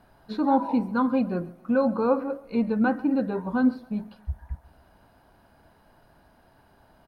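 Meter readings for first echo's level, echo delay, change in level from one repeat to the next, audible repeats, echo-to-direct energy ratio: -21.0 dB, 0.136 s, -8.0 dB, 2, -20.5 dB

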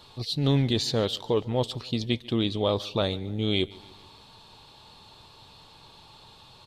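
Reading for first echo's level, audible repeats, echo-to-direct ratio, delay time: -22.5 dB, 3, -21.0 dB, 0.144 s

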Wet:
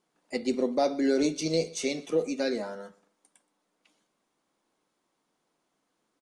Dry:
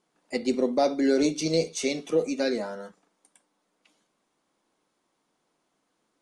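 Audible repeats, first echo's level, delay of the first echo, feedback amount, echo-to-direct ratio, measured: 2, -22.5 dB, 0.123 s, 27%, -22.0 dB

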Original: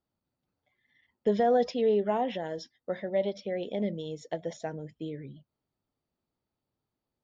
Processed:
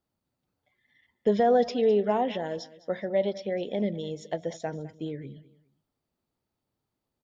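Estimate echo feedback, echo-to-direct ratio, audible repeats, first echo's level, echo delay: 29%, -18.0 dB, 2, -18.5 dB, 0.207 s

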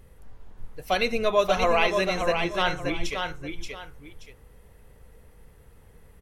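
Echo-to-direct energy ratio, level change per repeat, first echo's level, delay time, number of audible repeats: -5.0 dB, -11.5 dB, -5.5 dB, 0.579 s, 2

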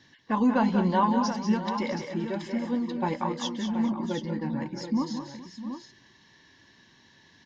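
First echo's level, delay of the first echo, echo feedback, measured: -8.0 dB, 0.187 s, no steady repeat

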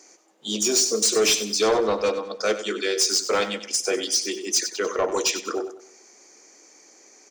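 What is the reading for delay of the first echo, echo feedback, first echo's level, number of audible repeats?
96 ms, 36%, -12.0 dB, 3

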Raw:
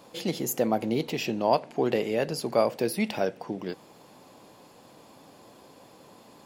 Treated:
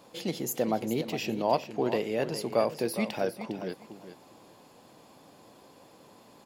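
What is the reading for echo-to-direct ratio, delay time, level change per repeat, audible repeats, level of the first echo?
-11.0 dB, 0.407 s, -15.0 dB, 2, -11.0 dB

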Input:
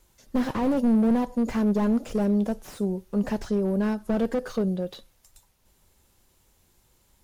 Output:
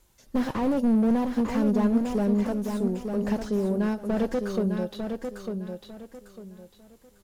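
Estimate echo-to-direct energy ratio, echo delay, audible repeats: -5.5 dB, 0.9 s, 3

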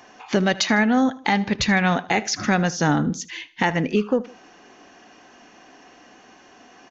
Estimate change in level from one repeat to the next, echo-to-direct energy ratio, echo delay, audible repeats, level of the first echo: -7.5 dB, -19.0 dB, 77 ms, 2, -19.5 dB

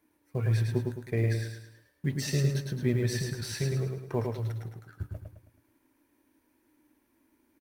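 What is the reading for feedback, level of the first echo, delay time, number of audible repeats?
41%, -4.0 dB, 0.107 s, 5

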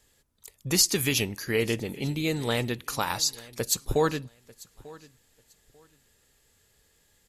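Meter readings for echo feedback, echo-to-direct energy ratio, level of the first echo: 22%, -21.5 dB, -21.5 dB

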